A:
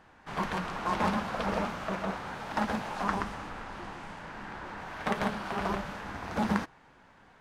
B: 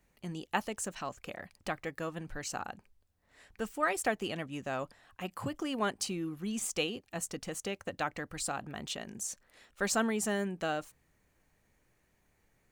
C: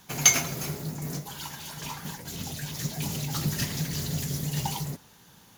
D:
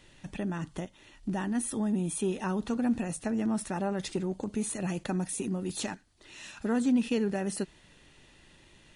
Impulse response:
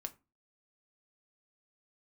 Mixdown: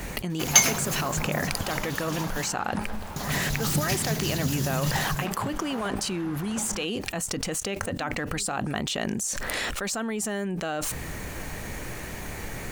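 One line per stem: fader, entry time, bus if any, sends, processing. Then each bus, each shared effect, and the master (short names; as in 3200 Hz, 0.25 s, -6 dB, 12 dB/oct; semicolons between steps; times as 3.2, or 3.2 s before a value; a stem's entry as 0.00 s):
-3.5 dB, 0.20 s, no send, compressor, threshold -30 dBFS, peak gain reduction 8 dB
-3.5 dB, 0.00 s, no send, fast leveller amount 100%
+1.5 dB, 0.30 s, muted 2.5–3.16, no send, dry
-18.5 dB, 1.15 s, no send, dry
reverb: off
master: dry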